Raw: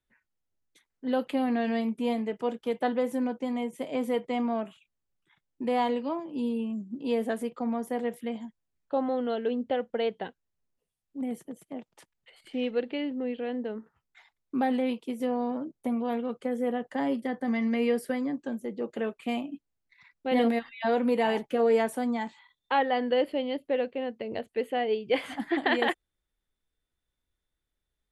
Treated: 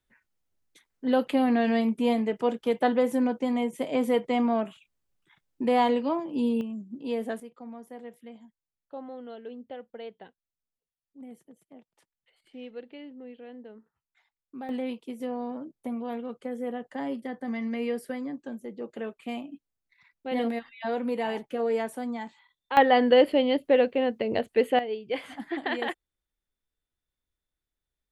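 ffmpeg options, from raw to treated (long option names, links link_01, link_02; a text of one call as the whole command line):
ffmpeg -i in.wav -af "asetnsamples=nb_out_samples=441:pad=0,asendcmd='6.61 volume volume -2.5dB;7.4 volume volume -12dB;14.69 volume volume -4dB;22.77 volume volume 7dB;24.79 volume volume -4.5dB',volume=4dB" out.wav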